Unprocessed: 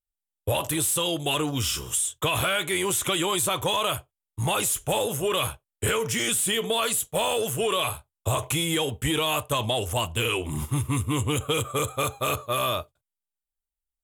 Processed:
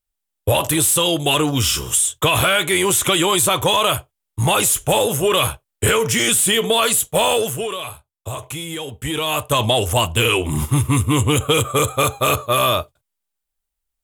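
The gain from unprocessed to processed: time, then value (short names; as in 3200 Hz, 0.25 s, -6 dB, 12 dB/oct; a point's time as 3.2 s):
7.35 s +8.5 dB
7.79 s -3 dB
8.83 s -3 dB
9.61 s +9 dB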